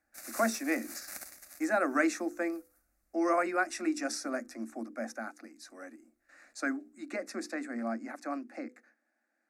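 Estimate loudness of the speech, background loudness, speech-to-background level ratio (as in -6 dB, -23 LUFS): -34.0 LUFS, -44.0 LUFS, 10.0 dB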